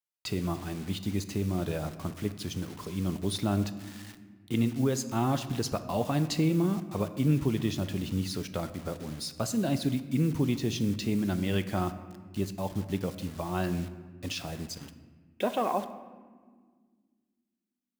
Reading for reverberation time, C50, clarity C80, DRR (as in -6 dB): 1.7 s, 12.0 dB, 13.5 dB, 10.0 dB